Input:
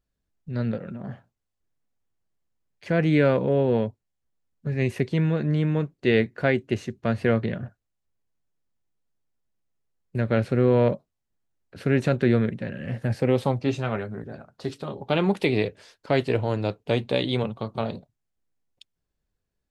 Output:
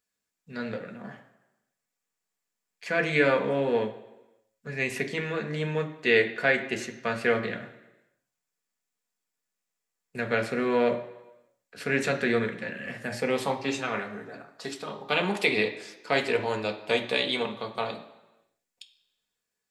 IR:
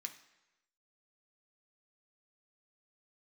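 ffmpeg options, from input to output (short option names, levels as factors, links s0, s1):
-filter_complex "[0:a]bass=f=250:g=-13,treble=f=4000:g=2[s0];[1:a]atrim=start_sample=2205,asetrate=43218,aresample=44100[s1];[s0][s1]afir=irnorm=-1:irlink=0,volume=2.24"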